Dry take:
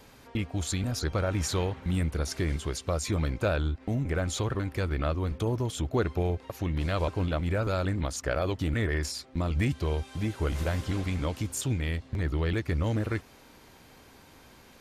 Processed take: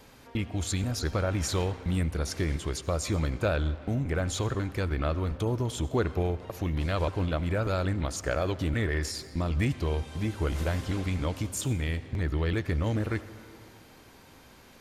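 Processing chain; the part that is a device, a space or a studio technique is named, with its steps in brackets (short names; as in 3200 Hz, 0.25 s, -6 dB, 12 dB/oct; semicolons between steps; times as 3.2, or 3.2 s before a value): saturated reverb return (on a send at -10.5 dB: reverb RT60 2.0 s, pre-delay 70 ms + soft clip -30.5 dBFS, distortion -9 dB)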